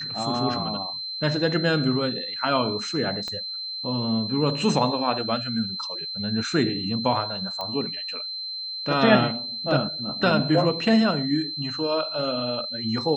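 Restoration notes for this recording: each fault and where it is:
tone 4100 Hz -30 dBFS
3.28 pop -19 dBFS
7.61 pop -18 dBFS

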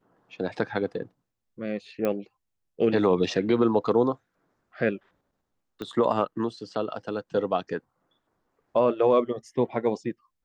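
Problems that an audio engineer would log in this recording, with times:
2.05 pop -15 dBFS
5.82 pop -22 dBFS

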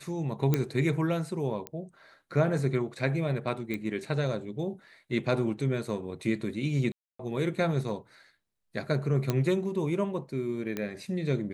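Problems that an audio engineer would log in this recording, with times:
0.54 pop -12 dBFS
1.67 pop -19 dBFS
3.74 pop -20 dBFS
6.92–7.19 gap 0.274 s
9.3 pop -13 dBFS
10.77 pop -18 dBFS

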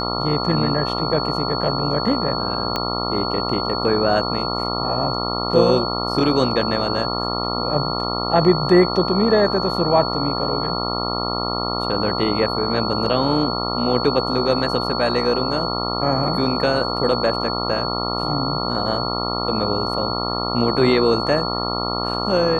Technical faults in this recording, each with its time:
buzz 60 Hz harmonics 23 -25 dBFS
tone 4400 Hz -26 dBFS
2.76 pop -8 dBFS
13.06 gap 2.5 ms

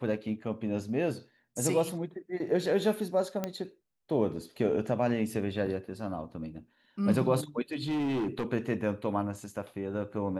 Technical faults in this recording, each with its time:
3.44 pop -17 dBFS
7.73–8.46 clipped -27.5 dBFS

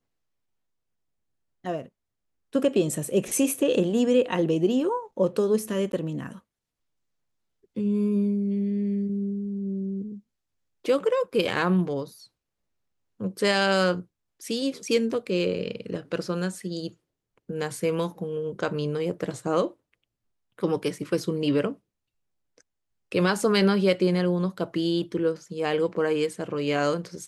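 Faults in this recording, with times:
5.92–5.93 gap 11 ms

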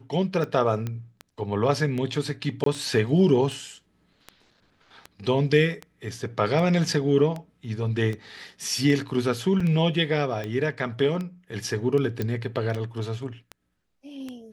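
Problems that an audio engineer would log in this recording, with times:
tick 78 rpm -20 dBFS
0.87 pop -18 dBFS
2.64–2.66 gap 23 ms
9.6 gap 4.6 ms
12.22 pop -15 dBFS

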